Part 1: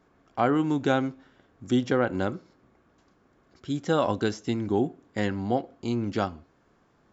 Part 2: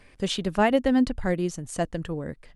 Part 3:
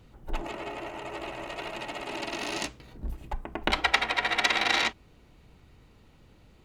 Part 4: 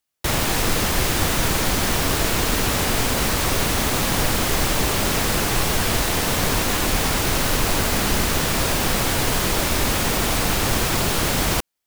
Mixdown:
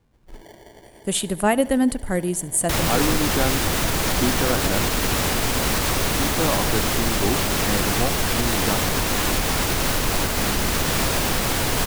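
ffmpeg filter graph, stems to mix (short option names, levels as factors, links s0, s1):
-filter_complex "[0:a]adelay=2500,volume=0.944[s0];[1:a]agate=range=0.355:threshold=0.00891:ratio=16:detection=peak,aexciter=amount=5.8:drive=9.6:freq=8100,adelay=850,volume=1.26,asplit=2[s1][s2];[s2]volume=0.0794[s3];[2:a]acrusher=samples=34:mix=1:aa=0.000001,volume=0.355[s4];[3:a]alimiter=limit=0.266:level=0:latency=1:release=91,adelay=2450,volume=1.06[s5];[s3]aecho=0:1:72|144|216|288|360|432|504|576|648:1|0.59|0.348|0.205|0.121|0.0715|0.0422|0.0249|0.0147[s6];[s0][s1][s4][s5][s6]amix=inputs=5:normalize=0"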